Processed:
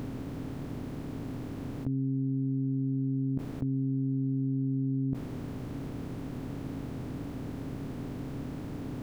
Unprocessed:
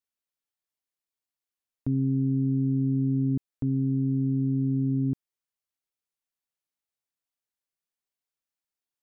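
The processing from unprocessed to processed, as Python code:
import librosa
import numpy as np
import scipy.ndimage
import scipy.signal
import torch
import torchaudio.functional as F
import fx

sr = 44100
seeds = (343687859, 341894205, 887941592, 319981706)

y = fx.bin_compress(x, sr, power=0.4)
y = fx.over_compress(y, sr, threshold_db=-38.0, ratio=-1.0)
y = y * librosa.db_to_amplitude(9.0)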